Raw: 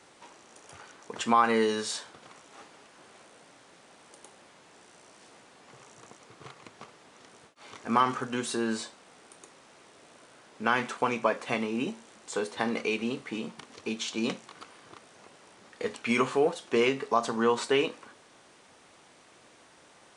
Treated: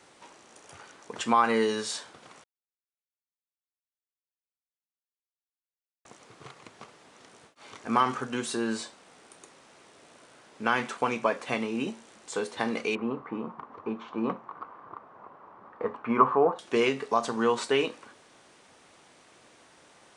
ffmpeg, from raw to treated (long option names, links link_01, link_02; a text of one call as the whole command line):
ffmpeg -i in.wav -filter_complex "[0:a]asettb=1/sr,asplit=3[link_01][link_02][link_03];[link_01]atrim=end=12.954[link_04];[link_02]atrim=start=12.95:end=16.59,asetpts=PTS-STARTPTS,afade=type=in:duration=0.004:curve=qsin,afade=type=out:start_time=3.636:duration=0.004:curve=qsin,lowpass=frequency=1100:width_type=q:width=3.8[link_05];[link_03]atrim=start=16.586[link_06];[link_04][link_05]acrossfade=duration=0.004:curve1=hsin:curve2=qsin[link_07];[link_07][link_06]acrossfade=duration=0.004:curve1=qsin:curve2=hsin,asplit=3[link_08][link_09][link_10];[link_08]atrim=end=2.44,asetpts=PTS-STARTPTS,afade=type=out:start_time=2.436:duration=0.004:curve=hsin[link_11];[link_09]atrim=start=2.44:end=6.05,asetpts=PTS-STARTPTS,volume=0[link_12];[link_10]atrim=start=6.05,asetpts=PTS-STARTPTS,afade=type=in:duration=0.004:curve=hsin[link_13];[link_11][link_12][link_13]concat=n=3:v=0:a=1" out.wav